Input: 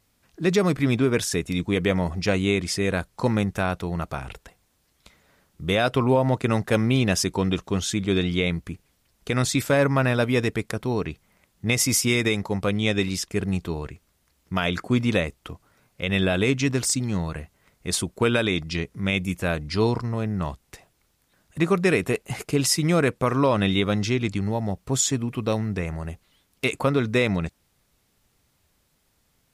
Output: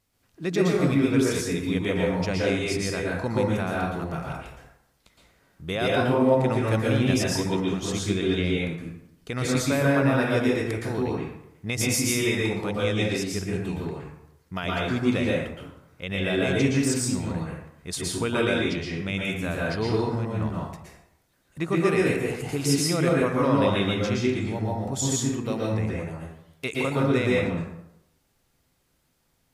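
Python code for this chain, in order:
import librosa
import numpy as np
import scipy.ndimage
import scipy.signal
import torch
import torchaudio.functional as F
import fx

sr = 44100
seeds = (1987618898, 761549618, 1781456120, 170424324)

y = fx.rev_plate(x, sr, seeds[0], rt60_s=0.79, hf_ratio=0.6, predelay_ms=105, drr_db=-4.0)
y = y * 10.0 ** (-7.0 / 20.0)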